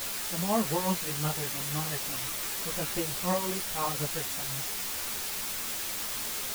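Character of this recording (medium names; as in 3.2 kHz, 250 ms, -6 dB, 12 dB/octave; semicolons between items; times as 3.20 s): tremolo triangle 5.8 Hz, depth 70%; a quantiser's noise floor 6-bit, dither triangular; a shimmering, thickened sound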